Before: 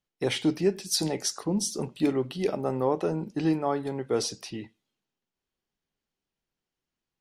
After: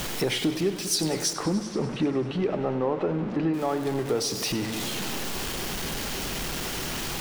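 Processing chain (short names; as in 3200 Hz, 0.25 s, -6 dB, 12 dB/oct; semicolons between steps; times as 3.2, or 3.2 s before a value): zero-crossing step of -33 dBFS; 1.33–3.54 LPF 2300 Hz 12 dB/oct; compressor 2.5:1, threshold -37 dBFS, peak gain reduction 13 dB; warbling echo 98 ms, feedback 76%, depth 81 cents, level -14 dB; gain +9 dB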